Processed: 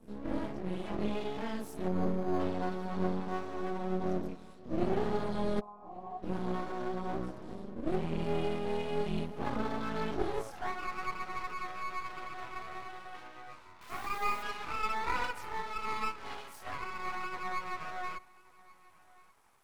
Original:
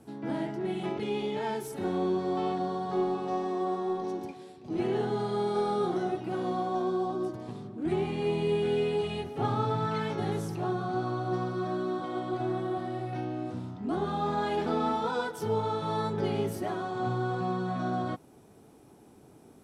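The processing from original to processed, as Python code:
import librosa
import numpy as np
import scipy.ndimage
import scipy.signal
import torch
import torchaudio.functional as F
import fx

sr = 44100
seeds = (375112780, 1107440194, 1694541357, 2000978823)

p1 = fx.chorus_voices(x, sr, voices=2, hz=0.49, base_ms=24, depth_ms=2.2, mix_pct=60)
p2 = fx.quant_dither(p1, sr, seeds[0], bits=8, dither='none', at=(13.81, 14.43))
p3 = fx.filter_sweep_highpass(p2, sr, from_hz=190.0, to_hz=1100.0, start_s=9.99, end_s=10.73, q=3.4)
p4 = np.maximum(p3, 0.0)
p5 = fx.formant_cascade(p4, sr, vowel='a', at=(5.59, 6.22), fade=0.02)
p6 = p5 + fx.echo_single(p5, sr, ms=1135, db=-23.0, dry=0)
y = fx.resample_linear(p6, sr, factor=8, at=(1.88, 2.4))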